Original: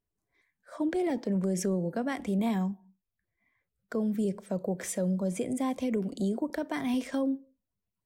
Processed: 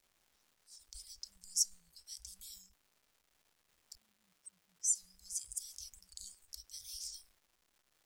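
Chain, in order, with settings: 3.95–4.95 spectral contrast raised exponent 2.2; inverse Chebyshev band-stop 260–1200 Hz, stop band 80 dB; bell 5200 Hz +10.5 dB 0.59 oct; crackle 530/s -63 dBFS; gain +3 dB

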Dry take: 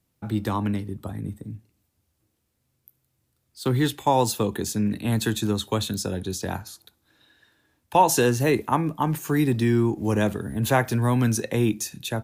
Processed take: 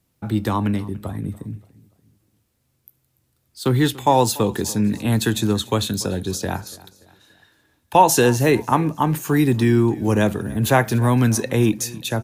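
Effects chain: feedback echo 0.289 s, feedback 43%, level -21 dB; gain +4.5 dB

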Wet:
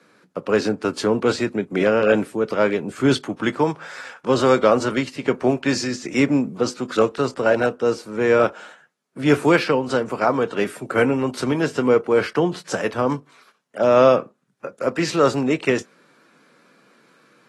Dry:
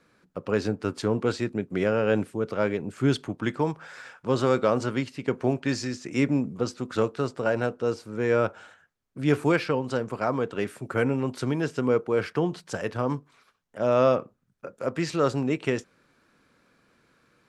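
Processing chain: Bessel high-pass 200 Hz, order 8; gain +7.5 dB; AAC 32 kbps 32000 Hz

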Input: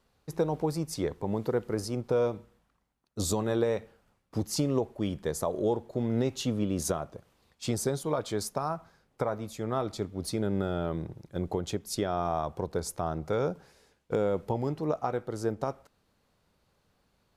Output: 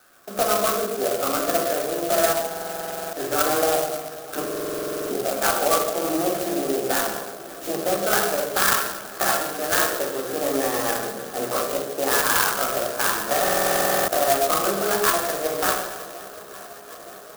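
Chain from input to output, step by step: delay-line pitch shifter +5.5 st; bell 1700 Hz +13.5 dB 0.74 oct; compressor 1.5:1, threshold -47 dBFS, peak gain reduction 9.5 dB; speaker cabinet 490–4300 Hz, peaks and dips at 900 Hz -7 dB, 1400 Hz +4 dB, 2000 Hz -10 dB; swung echo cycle 0.92 s, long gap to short 1.5:1, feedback 69%, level -20 dB; reverb RT60 1.1 s, pre-delay 3 ms, DRR -4 dB; stuck buffer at 2.48/4.46/13.43, samples 2048, times 13; clock jitter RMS 0.1 ms; gain +7.5 dB

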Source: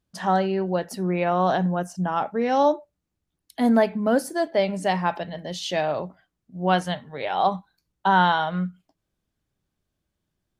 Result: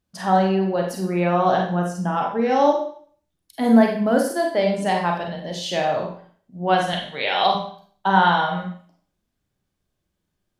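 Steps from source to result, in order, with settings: 6.93–7.55 weighting filter D; Schroeder reverb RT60 0.51 s, combs from 31 ms, DRR 1 dB

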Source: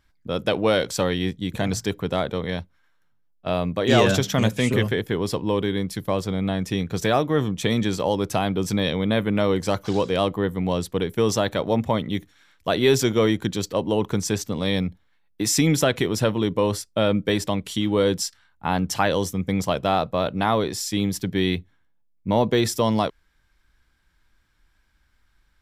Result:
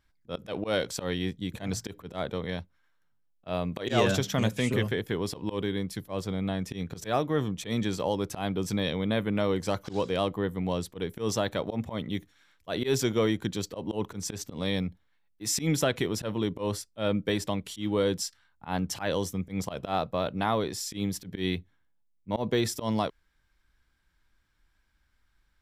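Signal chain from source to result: auto swell 0.1 s; 3.72–5.61 mismatched tape noise reduction encoder only; gain -6 dB

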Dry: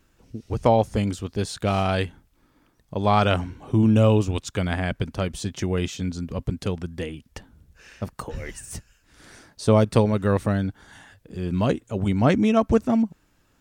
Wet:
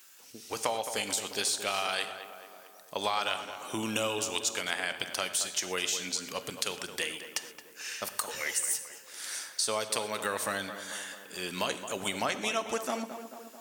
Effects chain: HPF 550 Hz 6 dB/oct; tilt +4.5 dB/oct; compressor 6:1, threshold -31 dBFS, peak gain reduction 14.5 dB; tape echo 0.22 s, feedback 65%, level -9 dB, low-pass 1900 Hz; non-linear reverb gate 0.15 s flat, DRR 11.5 dB; gain +3 dB

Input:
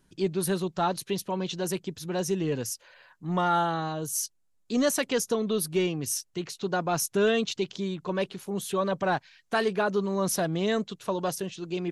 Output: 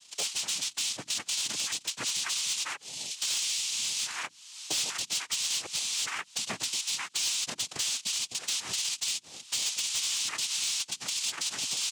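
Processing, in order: band-swap scrambler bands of 4000 Hz; recorder AGC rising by 28 dB/s; notches 50/100/150 Hz; comb 4.3 ms, depth 89%; in parallel at -2 dB: limiter -20 dBFS, peak gain reduction 10.5 dB; on the sum: compressor 4:1, threshold -30 dBFS, peak gain reduction 13.5 dB; noise vocoder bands 4; hard clip -24.5 dBFS, distortion -17 dB

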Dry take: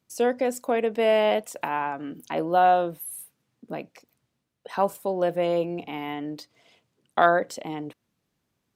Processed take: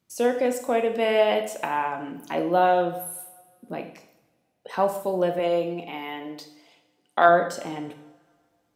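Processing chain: 5.39–7.29 HPF 310 Hz 6 dB/oct; two-slope reverb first 0.69 s, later 2.2 s, from -22 dB, DRR 5 dB

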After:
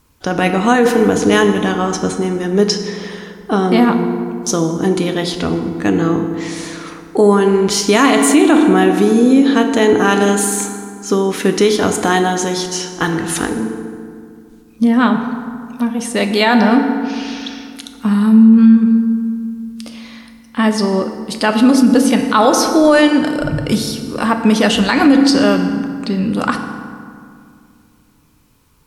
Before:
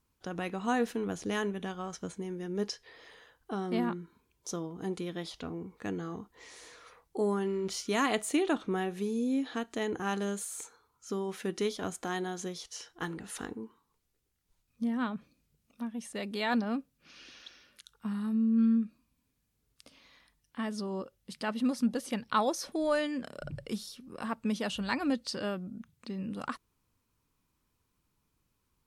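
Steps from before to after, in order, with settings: on a send at -5.5 dB: reverb RT60 2.2 s, pre-delay 3 ms; on the sum: maximiser +21.5 dB; gain -1 dB

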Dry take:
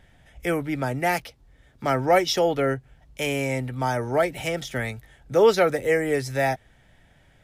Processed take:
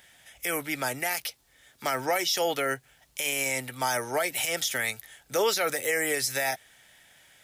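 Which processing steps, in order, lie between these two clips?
tilt +4.5 dB/oct; limiter -17 dBFS, peak gain reduction 13.5 dB

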